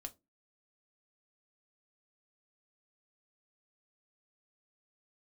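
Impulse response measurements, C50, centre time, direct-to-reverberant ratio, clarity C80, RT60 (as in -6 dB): 22.0 dB, 4 ms, 6.0 dB, 30.5 dB, 0.20 s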